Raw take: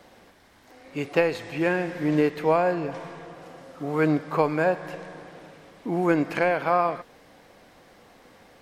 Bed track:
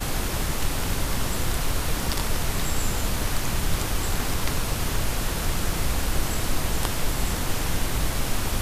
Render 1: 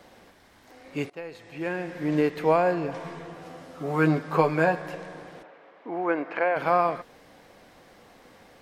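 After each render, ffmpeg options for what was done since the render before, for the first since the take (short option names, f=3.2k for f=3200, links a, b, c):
-filter_complex "[0:a]asettb=1/sr,asplit=3[a][b][c];[a]atrim=end=3.044[d];[b]atrim=start=3.04:end=4.82,asetpts=PTS-STARTPTS,afade=t=in:d=0.004:c=qsin,afade=t=out:st=1.776:d=0.004:c=qsin,asplit=2[e][f];[f]adelay=12,volume=-4.5dB[g];[e][g]amix=inputs=2:normalize=0,atrim=end_sample=78498[h];[c]atrim=start=4.816[i];[d][h]acrossfade=d=0.004:c1=hsin:c2=qsin[j];[j][i]acrossfade=d=0.004:c1=qsin:c2=hsin,asplit=3[k][l][m];[k]afade=t=out:st=5.42:d=0.02[n];[l]highpass=450,lowpass=2.1k,afade=t=in:st=5.42:d=0.02,afade=t=out:st=6.55:d=0.02[o];[m]afade=t=in:st=6.55:d=0.02[p];[n][o][p]amix=inputs=3:normalize=0,asplit=2[q][r];[q]atrim=end=1.1,asetpts=PTS-STARTPTS,afade=t=out:st=1.096:d=0.004:c=hsin:silence=0.0707946[s];[r]atrim=start=1.1,asetpts=PTS-STARTPTS,afade=t=in:d=1.38:silence=0.0707946[t];[s][t]concat=n=2:v=0:a=1"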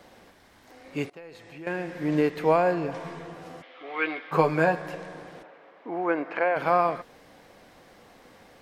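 -filter_complex "[0:a]asettb=1/sr,asplit=3[a][b][c];[a]atrim=end=1.094[d];[b]atrim=start=1.09:end=1.67,asetpts=PTS-STARTPTS,afade=t=in:d=0.004:c=qsin,afade=t=out:st=0.576:d=0.004:c=qsin,acompressor=threshold=-42dB:ratio=2.5:attack=3.2:release=140:knee=1:detection=peak[e];[c]atrim=start=1.666[f];[d][e]acrossfade=d=0.004:c1=hsin:c2=qsin[g];[g][f]acrossfade=d=0.004:c1=qsin:c2=hsin,asplit=3[h][i][j];[h]afade=t=out:st=3.61:d=0.02[k];[i]highpass=f=410:w=0.5412,highpass=f=410:w=1.3066,equalizer=f=420:t=q:w=4:g=-7,equalizer=f=610:t=q:w=4:g=-9,equalizer=f=930:t=q:w=4:g=-6,equalizer=f=1.4k:t=q:w=4:g=-4,equalizer=f=2.2k:t=q:w=4:g=9,equalizer=f=3.3k:t=q:w=4:g=8,lowpass=f=3.7k:w=0.5412,lowpass=f=3.7k:w=1.3066,afade=t=in:st=3.61:d=0.02,afade=t=out:st=4.31:d=0.02[l];[j]afade=t=in:st=4.31:d=0.02[m];[k][l][m]amix=inputs=3:normalize=0"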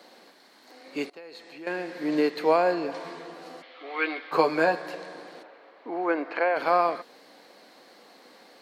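-af "highpass=f=230:w=0.5412,highpass=f=230:w=1.3066,equalizer=f=4.3k:t=o:w=0.26:g=12"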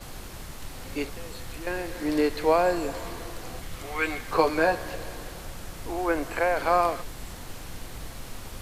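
-filter_complex "[1:a]volume=-14dB[a];[0:a][a]amix=inputs=2:normalize=0"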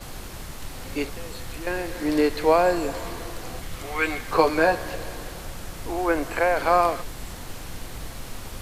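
-af "volume=3dB"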